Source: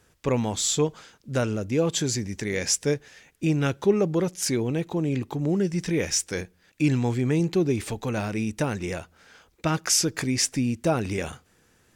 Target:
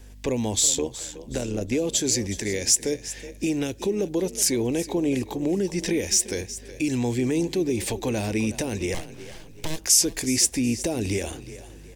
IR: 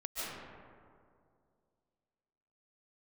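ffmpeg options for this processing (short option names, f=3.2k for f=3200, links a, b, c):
-filter_complex "[0:a]aeval=exprs='val(0)+0.00282*(sin(2*PI*50*n/s)+sin(2*PI*2*50*n/s)/2+sin(2*PI*3*50*n/s)/3+sin(2*PI*4*50*n/s)/4+sin(2*PI*5*50*n/s)/5)':c=same,asplit=3[a][b][c];[a]afade=t=out:st=0.68:d=0.02[d];[b]tremolo=f=79:d=0.667,afade=t=in:st=0.68:d=0.02,afade=t=out:st=1.71:d=0.02[e];[c]afade=t=in:st=1.71:d=0.02[f];[d][e][f]amix=inputs=3:normalize=0,equalizer=f=150:w=2.2:g=-15,asettb=1/sr,asplit=3[g][h][i];[g]atrim=end=8.944[j];[h]atrim=start=8.94:end=9.78,asetpts=PTS-STARTPTS,afade=t=in:d=0.004:c=qsin,afade=t=out:st=0.836:d=0.004:c=qsin,aeval=exprs='abs(val(0))':c=same[k];[i]atrim=start=9.776[l];[j][k]acrossfade=d=0.004:c1=hsin:c2=qsin[m];[m][l]acrossfade=d=0.004:c1=qsin:c2=hsin,acrossover=split=460|3000[n][o][p];[o]acompressor=threshold=-36dB:ratio=6[q];[n][q][p]amix=inputs=3:normalize=0,acrossover=split=7000[r][s];[r]alimiter=level_in=1dB:limit=-24dB:level=0:latency=1:release=263,volume=-1dB[t];[t][s]amix=inputs=2:normalize=0,equalizer=f=1.3k:w=3.3:g=-12.5,asplit=2[u][v];[v]asplit=3[w][x][y];[w]adelay=370,afreqshift=30,volume=-15dB[z];[x]adelay=740,afreqshift=60,volume=-24.1dB[aa];[y]adelay=1110,afreqshift=90,volume=-33.2dB[ab];[z][aa][ab]amix=inputs=3:normalize=0[ac];[u][ac]amix=inputs=2:normalize=0,volume=8.5dB"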